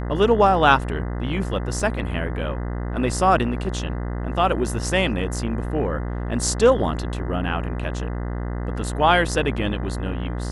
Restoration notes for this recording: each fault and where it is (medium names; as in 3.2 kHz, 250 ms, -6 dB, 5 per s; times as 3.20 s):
buzz 60 Hz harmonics 34 -27 dBFS
1.80 s: dropout 2.9 ms